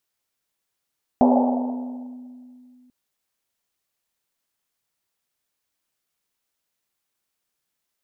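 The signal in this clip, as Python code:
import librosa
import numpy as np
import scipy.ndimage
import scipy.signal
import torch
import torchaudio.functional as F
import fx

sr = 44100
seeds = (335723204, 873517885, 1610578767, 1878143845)

y = fx.risset_drum(sr, seeds[0], length_s=1.69, hz=250.0, decay_s=2.7, noise_hz=690.0, noise_width_hz=390.0, noise_pct=40)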